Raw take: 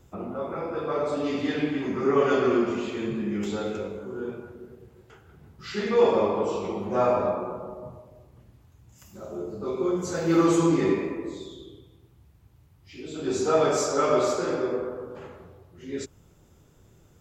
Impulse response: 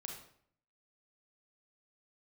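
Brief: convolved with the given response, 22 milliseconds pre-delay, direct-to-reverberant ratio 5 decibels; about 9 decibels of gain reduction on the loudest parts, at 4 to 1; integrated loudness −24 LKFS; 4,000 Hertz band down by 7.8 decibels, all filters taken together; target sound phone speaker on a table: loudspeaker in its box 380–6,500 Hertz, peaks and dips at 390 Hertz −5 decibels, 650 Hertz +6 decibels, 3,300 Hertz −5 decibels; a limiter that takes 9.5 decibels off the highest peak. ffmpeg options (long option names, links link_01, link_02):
-filter_complex "[0:a]equalizer=frequency=4000:width_type=o:gain=-7,acompressor=threshold=-26dB:ratio=4,alimiter=level_in=1.5dB:limit=-24dB:level=0:latency=1,volume=-1.5dB,asplit=2[link_01][link_02];[1:a]atrim=start_sample=2205,adelay=22[link_03];[link_02][link_03]afir=irnorm=-1:irlink=0,volume=-2dB[link_04];[link_01][link_04]amix=inputs=2:normalize=0,highpass=frequency=380:width=0.5412,highpass=frequency=380:width=1.3066,equalizer=frequency=390:width_type=q:width=4:gain=-5,equalizer=frequency=650:width_type=q:width=4:gain=6,equalizer=frequency=3300:width_type=q:width=4:gain=-5,lowpass=frequency=6500:width=0.5412,lowpass=frequency=6500:width=1.3066,volume=11.5dB"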